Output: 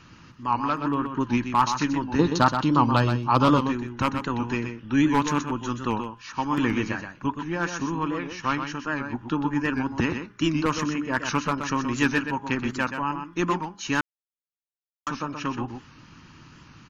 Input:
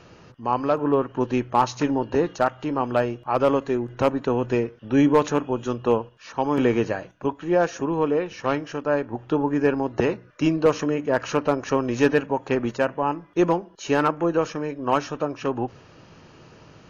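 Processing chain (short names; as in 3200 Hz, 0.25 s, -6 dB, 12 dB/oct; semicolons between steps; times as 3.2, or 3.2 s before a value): band shelf 540 Hz -15 dB 1.2 oct; de-hum 204.5 Hz, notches 8; harmonic-percussive split harmonic -5 dB; 2.19–3.65 graphic EQ 125/250/500/1000/2000/4000 Hz +11/+4/+7/+5/-6/+12 dB; echo 0.125 s -7.5 dB; 14.01–15.07 mute; record warp 78 rpm, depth 100 cents; gain +3 dB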